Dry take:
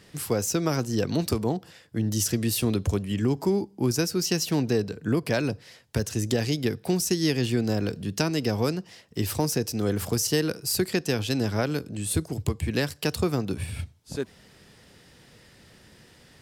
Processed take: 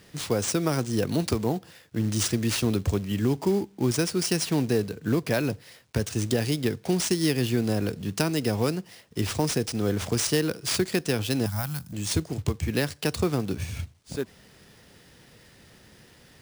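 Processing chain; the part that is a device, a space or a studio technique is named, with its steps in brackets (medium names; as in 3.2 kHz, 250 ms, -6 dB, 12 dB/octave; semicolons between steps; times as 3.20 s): early companding sampler (sample-rate reducer 15 kHz, jitter 0%; companded quantiser 6-bit); 11.46–11.93 s: FFT filter 170 Hz 0 dB, 410 Hz -30 dB, 770 Hz -2 dB, 2.5 kHz -8 dB, 15 kHz +9 dB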